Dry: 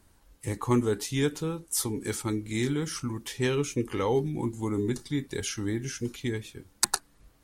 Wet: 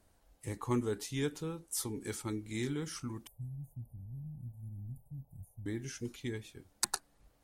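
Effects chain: 3.27–5.66 inverse Chebyshev band-stop 470–5300 Hz, stop band 60 dB; band noise 440–860 Hz -72 dBFS; gain -8 dB

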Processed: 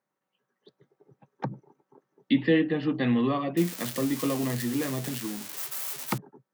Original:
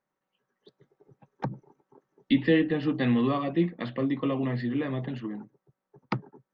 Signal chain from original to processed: 3.57–6.18 switching spikes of -21.5 dBFS; HPF 100 Hz

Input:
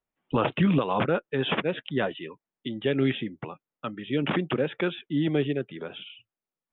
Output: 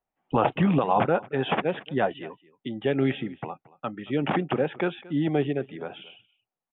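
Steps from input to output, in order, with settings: LPF 2800 Hz 12 dB/oct; bell 770 Hz +10 dB 0.46 oct; echo 0.226 s -21 dB

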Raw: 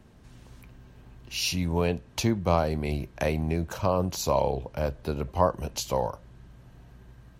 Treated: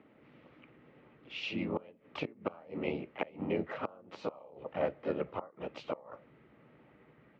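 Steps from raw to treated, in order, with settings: flipped gate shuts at -14 dBFS, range -26 dB; harmoniser +3 st -5 dB, +4 st -4 dB; speaker cabinet 370–2300 Hz, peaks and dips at 390 Hz -3 dB, 720 Hz -8 dB, 1000 Hz -9 dB, 1600 Hz -9 dB; gain +1 dB

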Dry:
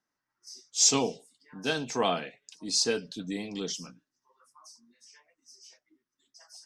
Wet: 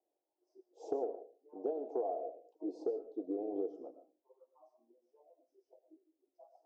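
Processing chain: elliptic band-pass 330–740 Hz, stop band 50 dB; compressor 16:1, threshold -41 dBFS, peak gain reduction 17 dB; reverb RT60 0.35 s, pre-delay 70 ms, DRR 10.5 dB; gain +8 dB

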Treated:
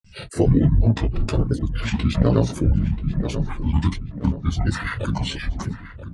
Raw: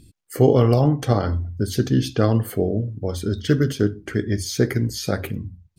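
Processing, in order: chorus 1.3 Hz, delay 18.5 ms, depth 3 ms; granular stretch 0.53×, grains 28 ms; grains, spray 0.1 s, pitch spread up and down by 12 st; tape echo 0.49 s, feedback 49%, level -13 dB, low-pass 4400 Hz; in parallel at +1.5 dB: limiter -16 dBFS, peak gain reduction 9.5 dB; on the sum: speed mistake 15 ips tape played at 7.5 ips

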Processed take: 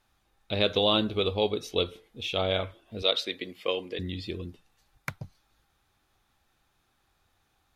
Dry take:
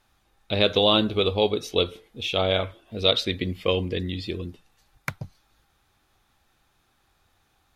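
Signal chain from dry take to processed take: 3.02–3.99 HPF 360 Hz 12 dB/oct; gain -4.5 dB

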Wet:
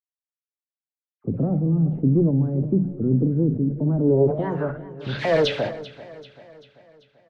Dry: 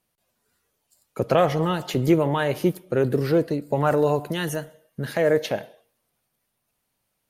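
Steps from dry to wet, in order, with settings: level-crossing sampler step -35.5 dBFS; low-pass opened by the level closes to 1900 Hz, open at -18 dBFS; on a send at -11 dB: comb 1.4 ms + reverb RT60 0.75 s, pre-delay 7 ms; on the sum: one-sided clip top -16.5 dBFS; dispersion lows, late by 80 ms, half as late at 2300 Hz; low-pass sweep 240 Hz -> 4100 Hz, 3.99–5.1; wow and flutter 130 cents; notches 60/120/180 Hz; feedback echo 0.389 s, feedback 52%, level -17 dB; sustainer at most 110 dB/s

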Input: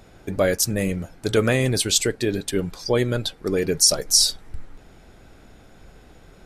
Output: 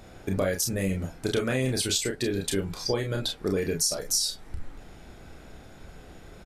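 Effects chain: compressor 6:1, threshold -25 dBFS, peak gain reduction 12.5 dB; early reflections 31 ms -5 dB, 43 ms -9.5 dB

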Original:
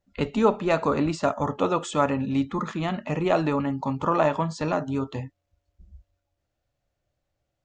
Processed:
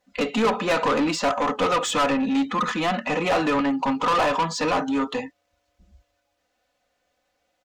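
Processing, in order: comb 4 ms, depth 79%; overdrive pedal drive 26 dB, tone 6100 Hz, clips at -4.5 dBFS; gain -8.5 dB

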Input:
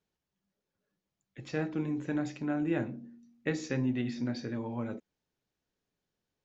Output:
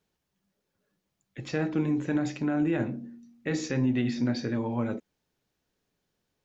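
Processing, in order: limiter -24.5 dBFS, peak gain reduction 7.5 dB; gain +6.5 dB

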